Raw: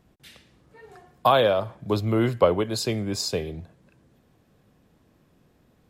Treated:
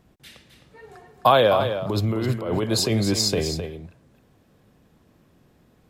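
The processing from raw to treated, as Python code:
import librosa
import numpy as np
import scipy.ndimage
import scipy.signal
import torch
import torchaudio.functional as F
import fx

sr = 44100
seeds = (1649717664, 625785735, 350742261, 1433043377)

y = fx.over_compress(x, sr, threshold_db=-26.0, ratio=-1.0, at=(1.56, 3.6), fade=0.02)
y = y + 10.0 ** (-9.0 / 20.0) * np.pad(y, (int(261 * sr / 1000.0), 0))[:len(y)]
y = y * librosa.db_to_amplitude(2.5)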